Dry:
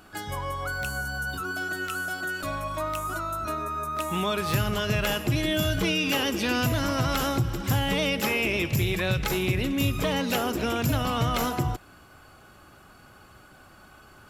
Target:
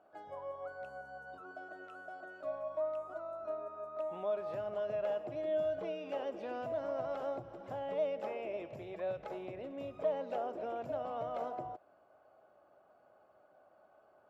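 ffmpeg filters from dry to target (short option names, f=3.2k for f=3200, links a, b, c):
-af "lowpass=f=620:t=q:w=4.9,aderivative,volume=6dB"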